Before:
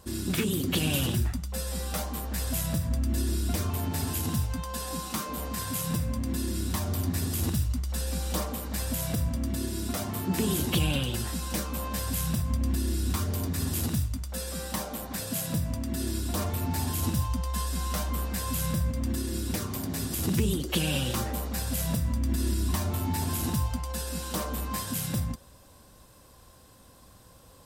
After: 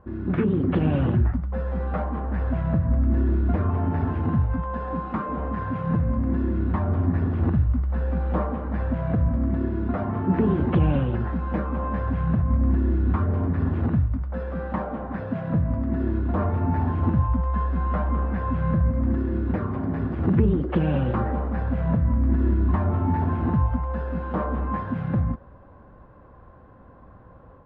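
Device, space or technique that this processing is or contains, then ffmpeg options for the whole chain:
action camera in a waterproof case: -af "lowpass=f=1.6k:w=0.5412,lowpass=f=1.6k:w=1.3066,dynaudnorm=f=190:g=3:m=5.5dB,volume=1.5dB" -ar 48000 -c:a aac -b:a 64k

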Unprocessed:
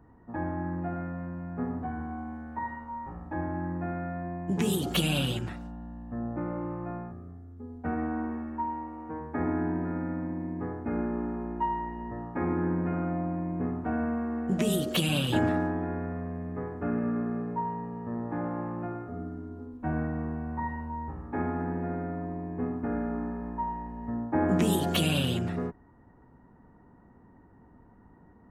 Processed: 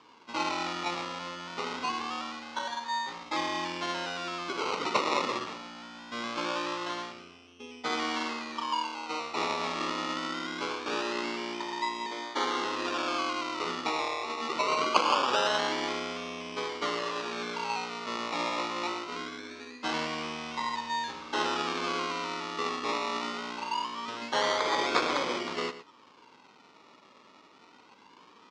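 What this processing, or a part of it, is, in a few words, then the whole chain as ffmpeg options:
circuit-bent sampling toy: -filter_complex "[0:a]asettb=1/sr,asplit=3[a][b][c];[a]atrim=end=12.064[d];[b]atrim=start=12.06:end=12.65,asetpts=PTS-STARTPTS,afade=t=in:d=0.004:c=qsin,afade=t=out:st=0.586:d=0.004:c=qsin,highpass=f=240:w=0.5412,highpass=f=240:w=1.3066[e];[c]atrim=start=12.646[f];[d][e]acrossfade=d=0.004:c1=hsin:c2=qsin[g];[g][f]acrossfade=d=0.004:c1=qsin:c2=hsin,afftfilt=real='re*lt(hypot(re,im),0.251)':imag='im*lt(hypot(re,im),0.251)':win_size=1024:overlap=0.75,acrusher=samples=22:mix=1:aa=0.000001:lfo=1:lforange=13.2:lforate=0.23,highpass=570,equalizer=f=700:t=q:w=4:g=-10,equalizer=f=1.1k:t=q:w=4:g=5,equalizer=f=1.7k:t=q:w=4:g=-6,lowpass=f=5.5k:w=0.5412,lowpass=f=5.5k:w=1.3066,asplit=2[h][i];[i]adelay=116.6,volume=-13dB,highshelf=f=4k:g=-2.62[j];[h][j]amix=inputs=2:normalize=0,volume=8.5dB"

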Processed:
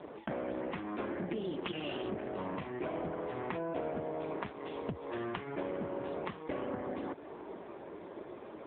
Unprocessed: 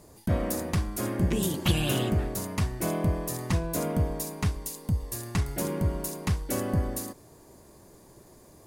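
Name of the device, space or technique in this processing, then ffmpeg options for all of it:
voicemail: -filter_complex "[0:a]asettb=1/sr,asplit=3[a][b][c];[a]atrim=end=2.024[d];[b]atrim=start=2.02:end=2.72,asetpts=PTS-STARTPTS,afade=t=in:d=0.004:c=qsin,afade=t=out:st=0.696:d=0.004:c=qsin,lowshelf=f=83:g=5[e];[c]atrim=start=2.716[f];[d][e]acrossfade=d=0.004:c1=hsin:c2=qsin[g];[g][f]acrossfade=d=0.004:c1=qsin:c2=hsin,highpass=300,lowpass=3.2k,acompressor=threshold=-45dB:ratio=10,volume=13dB" -ar 8000 -c:a libopencore_amrnb -b:a 5150

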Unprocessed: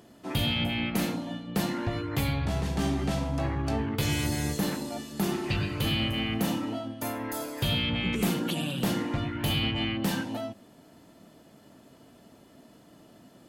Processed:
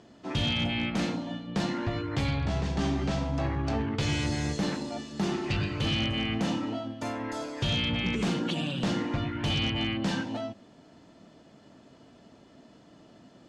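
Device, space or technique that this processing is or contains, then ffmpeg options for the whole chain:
synthesiser wavefolder: -af "aeval=exprs='0.0891*(abs(mod(val(0)/0.0891+3,4)-2)-1)':c=same,lowpass=f=6.8k:w=0.5412,lowpass=f=6.8k:w=1.3066"

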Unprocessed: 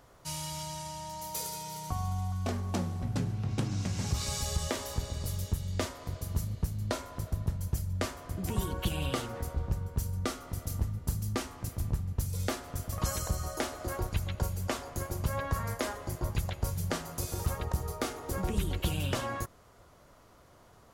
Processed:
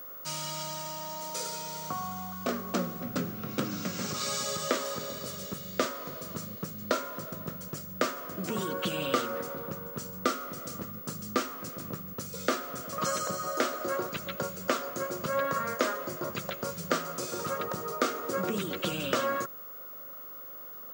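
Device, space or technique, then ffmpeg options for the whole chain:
old television with a line whistle: -af "highpass=f=180:w=0.5412,highpass=f=180:w=1.3066,equalizer=f=530:t=q:w=4:g=6,equalizer=f=840:t=q:w=4:g=-9,equalizer=f=1.3k:t=q:w=4:g=10,lowpass=f=8.3k:w=0.5412,lowpass=f=8.3k:w=1.3066,aeval=exprs='val(0)+0.00562*sin(2*PI*15625*n/s)':c=same,volume=3.5dB"

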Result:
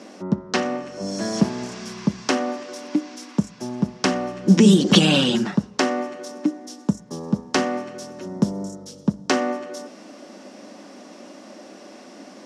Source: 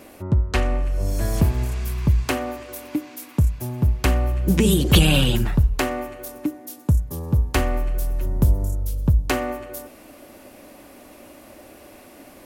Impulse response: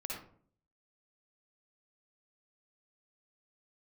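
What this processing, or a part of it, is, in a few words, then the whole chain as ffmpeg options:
television speaker: -af "highpass=f=190:w=0.5412,highpass=f=190:w=1.3066,equalizer=f=200:t=q:w=4:g=9,equalizer=f=2.4k:t=q:w=4:g=-5,equalizer=f=5.5k:t=q:w=4:g=9,lowpass=f=7.3k:w=0.5412,lowpass=f=7.3k:w=1.3066,volume=2.5dB"

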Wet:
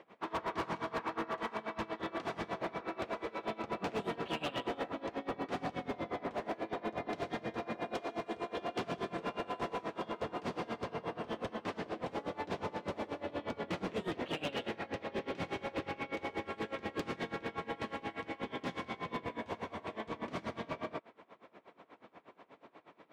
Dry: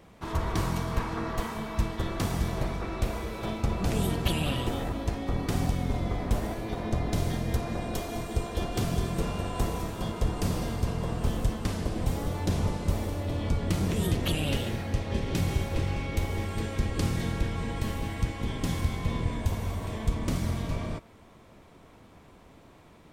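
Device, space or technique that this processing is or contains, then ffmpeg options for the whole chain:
helicopter radio: -filter_complex "[0:a]highpass=350,lowpass=2.7k,aeval=exprs='val(0)*pow(10,-22*(0.5-0.5*cos(2*PI*8.3*n/s))/20)':c=same,asoftclip=type=hard:threshold=-35dB,asettb=1/sr,asplit=3[a][b][c];[a]atrim=end=10.914[d];[b]atrim=start=10.91:end=11.64,asetpts=PTS-STARTPTS,afade=t=in:d=0.004:c=qsin,afade=t=out:st=0.726:d=0.004:c=qsin,bandreject=f=7.3k:w=9.5[e];[c]atrim=start=11.636[f];[d][e]acrossfade=d=0.004:c1=hsin:c2=qsin[g];[g][f]acrossfade=d=0.004:c1=qsin:c2=hsin,volume=4.5dB"

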